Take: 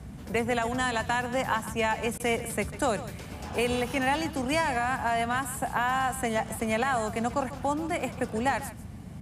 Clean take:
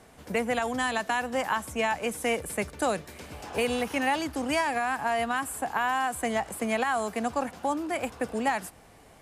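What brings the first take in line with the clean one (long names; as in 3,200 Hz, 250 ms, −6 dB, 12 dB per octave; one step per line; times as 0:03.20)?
repair the gap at 0:02.18, 17 ms
noise reduction from a noise print 7 dB
echo removal 145 ms −15 dB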